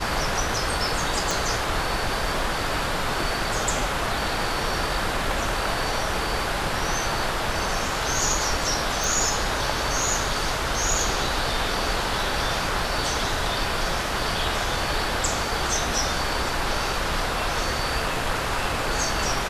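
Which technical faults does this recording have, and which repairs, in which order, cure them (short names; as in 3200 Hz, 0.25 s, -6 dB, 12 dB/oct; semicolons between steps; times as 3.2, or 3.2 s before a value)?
1.31 pop
9.04 pop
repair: de-click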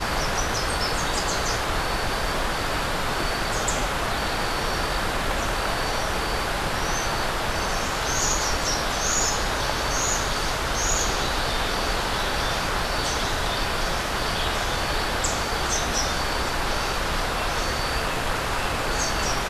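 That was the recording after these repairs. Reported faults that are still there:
1.31 pop
9.04 pop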